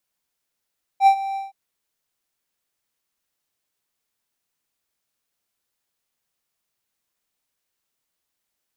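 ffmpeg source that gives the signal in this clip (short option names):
-f lavfi -i "aevalsrc='0.501*(1-4*abs(mod(782*t+0.25,1)-0.5))':d=0.52:s=44100,afade=t=in:d=0.067,afade=t=out:st=0.067:d=0.083:silence=0.158,afade=t=out:st=0.36:d=0.16"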